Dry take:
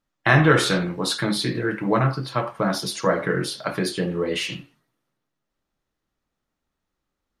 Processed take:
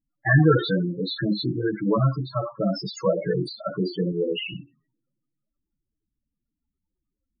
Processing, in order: loudest bins only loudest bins 8; 4.12–4.54 low shelf 94 Hz -10 dB; gain +1 dB

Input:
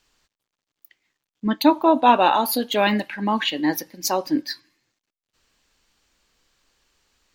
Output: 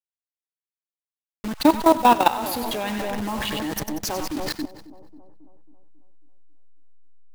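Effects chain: level-crossing sampler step -23 dBFS; split-band echo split 860 Hz, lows 0.272 s, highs 94 ms, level -8.5 dB; level quantiser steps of 15 dB; gain +3 dB

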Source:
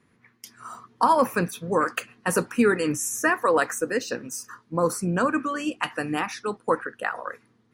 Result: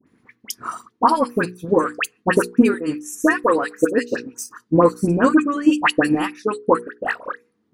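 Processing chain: transient shaper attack +10 dB, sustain -11 dB; bell 290 Hz +9 dB 0.89 oct; notches 60/120/180/240/300/360/420/480 Hz; dispersion highs, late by 68 ms, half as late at 1500 Hz; AGC gain up to 9 dB; gain -1 dB

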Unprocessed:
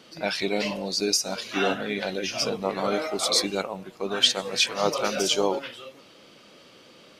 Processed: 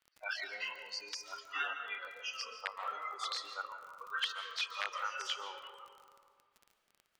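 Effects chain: spectral noise reduction 25 dB; compressor 5:1, threshold -26 dBFS, peak gain reduction 11 dB; wrapped overs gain 17.5 dB; ladder band-pass 1900 Hz, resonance 35%; crackle 26/s -52 dBFS; reverb RT60 2.0 s, pre-delay 0.103 s, DRR 7 dB; gain +7.5 dB

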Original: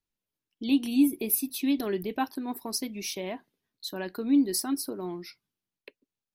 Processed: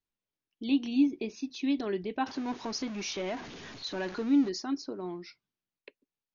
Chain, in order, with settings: 2.26–4.49 zero-crossing step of -34.5 dBFS; brick-wall FIR low-pass 6900 Hz; tone controls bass -2 dB, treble -4 dB; gain -2 dB

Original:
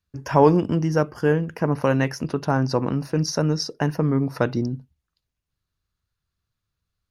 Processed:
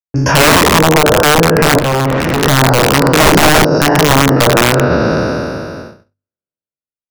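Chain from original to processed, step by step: spectral trails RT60 2.68 s; gate -45 dBFS, range -57 dB; notches 50/100/150/200/250 Hz; treble ducked by the level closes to 480 Hz, closed at -12 dBFS; 3.2–3.65 resonant low shelf 440 Hz +6 dB, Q 1.5; in parallel at +0.5 dB: compressor 6:1, threshold -27 dBFS, peak gain reduction 15.5 dB; on the sum: wrapped overs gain 10 dB; 1.79–2.43 tube stage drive 23 dB, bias 0.8; maximiser +13.5 dB; gain -1 dB

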